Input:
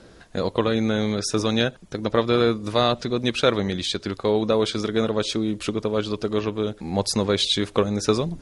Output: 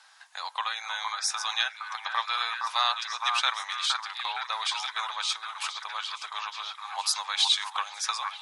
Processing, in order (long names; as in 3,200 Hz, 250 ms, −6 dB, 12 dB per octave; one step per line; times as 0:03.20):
Chebyshev high-pass filter 820 Hz, order 5
notch filter 1,400 Hz, Q 17
echo through a band-pass that steps 465 ms, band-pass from 1,100 Hz, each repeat 0.7 octaves, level −2.5 dB